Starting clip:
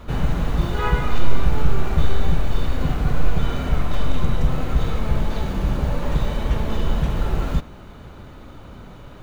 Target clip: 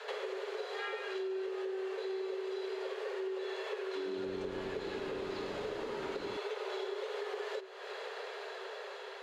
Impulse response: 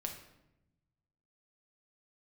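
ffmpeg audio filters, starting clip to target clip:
-filter_complex "[0:a]dynaudnorm=framelen=380:gausssize=7:maxgain=7dB,alimiter=limit=-6.5dB:level=0:latency=1:release=127,crystalizer=i=8.5:c=0,afreqshift=380,highpass=410,lowpass=3400,asettb=1/sr,asplit=3[link_01][link_02][link_03];[link_01]atrim=end=3.854[link_04];[link_02]atrim=start=3.85:end=6.37,asetpts=PTS-STARTPTS,afade=type=in:duration=0.004:curve=qsin,afade=type=out:start_time=2.516:duration=0.004:curve=qsin,asplit=8[link_05][link_06][link_07][link_08][link_09][link_10][link_11][link_12];[link_06]adelay=104,afreqshift=-92,volume=-9dB[link_13];[link_07]adelay=208,afreqshift=-184,volume=-13.4dB[link_14];[link_08]adelay=312,afreqshift=-276,volume=-17.9dB[link_15];[link_09]adelay=416,afreqshift=-368,volume=-22.3dB[link_16];[link_10]adelay=520,afreqshift=-460,volume=-26.7dB[link_17];[link_11]adelay=624,afreqshift=-552,volume=-31.2dB[link_18];[link_12]adelay=728,afreqshift=-644,volume=-35.6dB[link_19];[link_05][link_13][link_14][link_15][link_16][link_17][link_18][link_19]amix=inputs=8:normalize=0,atrim=end_sample=111132[link_20];[link_03]atrim=start=6.366[link_21];[link_04][link_20]acrossfade=duration=0.004:curve1=hsin:curve2=qsin[link_22];[link_22][link_21]acrossfade=duration=0.004:curve1=qsin:curve2=hsin,acompressor=threshold=-32dB:ratio=5,volume=-6.5dB"

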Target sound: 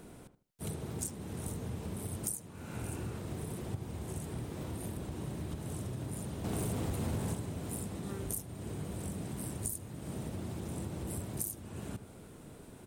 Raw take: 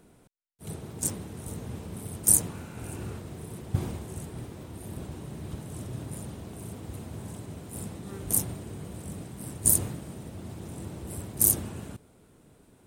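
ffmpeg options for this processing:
ffmpeg -i in.wav -filter_complex "[0:a]acompressor=threshold=-42dB:ratio=10,asettb=1/sr,asplit=3[link_01][link_02][link_03];[link_01]atrim=end=6.444[link_04];[link_02]atrim=start=6.44:end=7.34,asetpts=PTS-STARTPTS,afade=type=in:duration=0.004:curve=qsin,afade=type=out:start_time=0.896:duration=0.004:curve=qsin,aeval=exprs='0.0211*(cos(1*acos(clip(val(0)/0.0211,-1,1)))-cos(1*PI/2))+0.00944*(cos(5*acos(clip(val(0)/0.0211,-1,1)))-cos(5*PI/2))+0.00335*(cos(7*acos(clip(val(0)/0.0211,-1,1)))-cos(7*PI/2))':channel_layout=same[link_05];[link_03]atrim=start=7.336[link_06];[link_04][link_05]acrossfade=duration=0.004:curve1=hsin:curve2=qsin[link_07];[link_07][link_06]acrossfade=duration=0.004:curve1=qsin:curve2=hsin,asplit=2[link_08][link_09];[link_09]adelay=77,lowpass=frequency=1500:poles=1,volume=-10.5dB,asplit=2[link_10][link_11];[link_11]adelay=77,lowpass=frequency=1500:poles=1,volume=0.28,asplit=2[link_12][link_13];[link_13]adelay=77,lowpass=frequency=1500:poles=1,volume=0.28[link_14];[link_10][link_12][link_14]amix=inputs=3:normalize=0[link_15];[link_08][link_15]amix=inputs=2:normalize=0,volume=6dB" out.wav

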